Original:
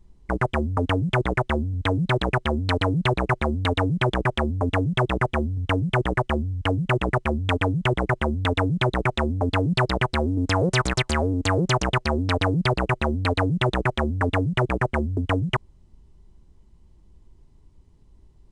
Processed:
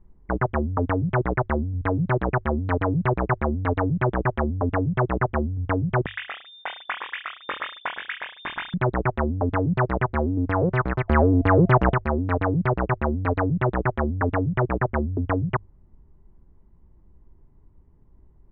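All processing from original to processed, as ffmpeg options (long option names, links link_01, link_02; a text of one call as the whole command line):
ffmpeg -i in.wav -filter_complex "[0:a]asettb=1/sr,asplit=3[link_01][link_02][link_03];[link_01]atrim=end=6.064[link_04];[link_02]atrim=start=6.06:end=8.74,asetpts=PTS-STARTPTS,afade=type=in:duration=0.004:curve=qsin,afade=type=out:start_time=2.676:duration=0.004:curve=qsin,aecho=1:1:20|44|72.8|107.4|148.8:0.631|0.398|0.251|0.158|0.1,atrim=end_sample=118188,lowpass=frequency=3100:width_type=q:width=0.5098,lowpass=frequency=3100:width_type=q:width=0.6013,lowpass=frequency=3100:width_type=q:width=0.9,lowpass=frequency=3100:width_type=q:width=2.563,afreqshift=-3700[link_05];[link_03]atrim=start=8.736[link_06];[link_04][link_05]acrossfade=duration=0.004:curve1=hsin:curve2=qsin[link_07];[link_07][link_06]acrossfade=duration=0.004:curve1=qsin:curve2=hsin,asettb=1/sr,asplit=3[link_08][link_09][link_10];[link_08]atrim=end=11.084[link_11];[link_09]atrim=start=11.08:end=11.94,asetpts=PTS-STARTPTS,afade=type=in:duration=0.004:curve=qsin,afade=type=out:start_time=0.856:duration=0.004:curve=qsin,aeval=exprs='val(0)+0.00355*sin(2*PI*680*n/s)':channel_layout=same,acontrast=55[link_12];[link_10]atrim=start=11.936[link_13];[link_11][link_12]acrossfade=duration=0.004:curve1=hsin:curve2=qsin[link_14];[link_14][link_13]acrossfade=duration=0.004:curve1=qsin:curve2=hsin,lowpass=frequency=1800:width=0.5412,lowpass=frequency=1800:width=1.3066,bandreject=frequency=50:width_type=h:width=6,bandreject=frequency=100:width_type=h:width=6" out.wav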